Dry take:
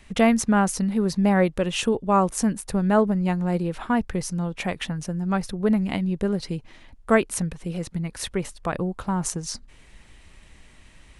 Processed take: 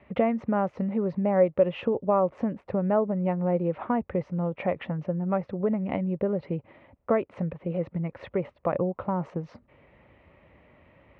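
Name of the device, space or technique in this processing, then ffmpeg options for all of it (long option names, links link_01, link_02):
bass amplifier: -af "highpass=70,acompressor=threshold=-23dB:ratio=3,highpass=72,equalizer=frequency=200:width_type=q:width=4:gain=-3,equalizer=frequency=560:width_type=q:width=4:gain=10,equalizer=frequency=1600:width_type=q:width=4:gain=-9,lowpass=frequency=2100:width=0.5412,lowpass=frequency=2100:width=1.3066"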